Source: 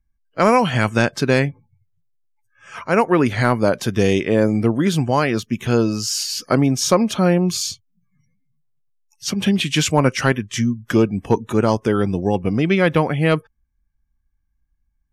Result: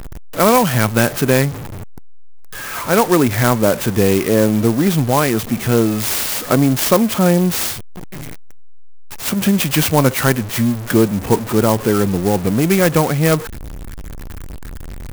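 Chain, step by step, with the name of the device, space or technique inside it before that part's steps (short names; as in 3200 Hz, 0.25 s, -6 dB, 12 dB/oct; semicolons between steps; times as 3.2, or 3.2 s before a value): early CD player with a faulty converter (zero-crossing step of -24 dBFS; clock jitter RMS 0.062 ms); gain +1.5 dB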